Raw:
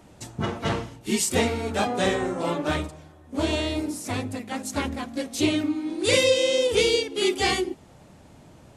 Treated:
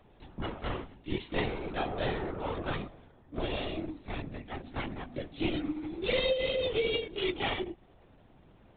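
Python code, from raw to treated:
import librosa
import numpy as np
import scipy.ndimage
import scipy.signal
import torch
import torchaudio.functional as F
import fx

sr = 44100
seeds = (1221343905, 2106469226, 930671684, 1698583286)

y = fx.lpc_vocoder(x, sr, seeds[0], excitation='whisper', order=16)
y = F.gain(torch.from_numpy(y), -8.5).numpy()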